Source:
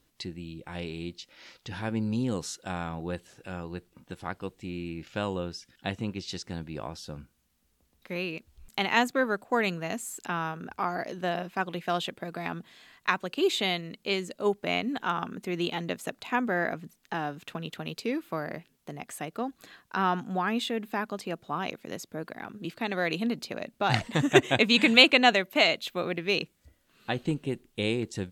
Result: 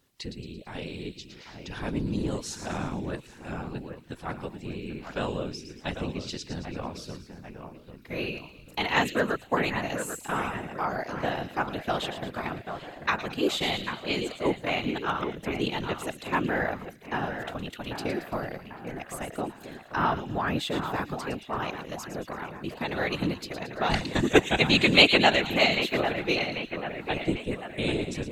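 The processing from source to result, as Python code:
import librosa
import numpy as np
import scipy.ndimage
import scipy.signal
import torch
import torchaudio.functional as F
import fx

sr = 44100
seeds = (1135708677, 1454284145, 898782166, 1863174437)

y = fx.echo_split(x, sr, split_hz=2600.0, low_ms=793, high_ms=112, feedback_pct=52, wet_db=-8.5)
y = fx.whisperise(y, sr, seeds[0])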